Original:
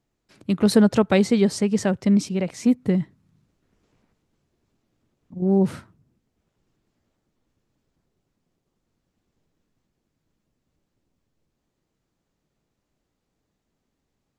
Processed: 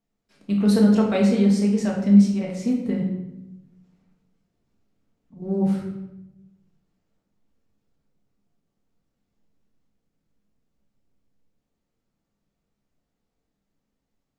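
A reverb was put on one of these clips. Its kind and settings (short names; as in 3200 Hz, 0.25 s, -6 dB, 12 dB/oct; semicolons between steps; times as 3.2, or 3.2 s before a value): shoebox room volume 330 m³, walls mixed, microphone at 1.6 m; gain -8.5 dB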